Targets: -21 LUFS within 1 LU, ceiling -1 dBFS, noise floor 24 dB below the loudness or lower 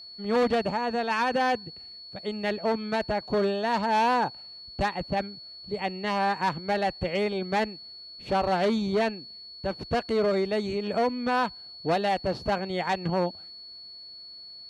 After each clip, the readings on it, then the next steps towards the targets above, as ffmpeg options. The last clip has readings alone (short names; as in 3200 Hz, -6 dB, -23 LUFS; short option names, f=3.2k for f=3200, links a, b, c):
steady tone 4400 Hz; tone level -42 dBFS; loudness -27.5 LUFS; peak -15.5 dBFS; loudness target -21.0 LUFS
-> -af "bandreject=f=4.4k:w=30"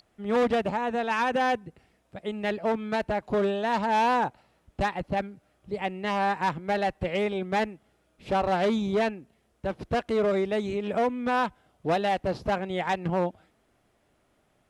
steady tone none; loudness -28.0 LUFS; peak -15.5 dBFS; loudness target -21.0 LUFS
-> -af "volume=7dB"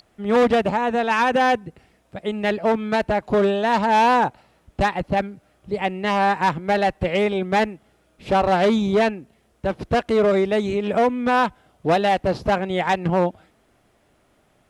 loudness -21.0 LUFS; peak -8.5 dBFS; noise floor -62 dBFS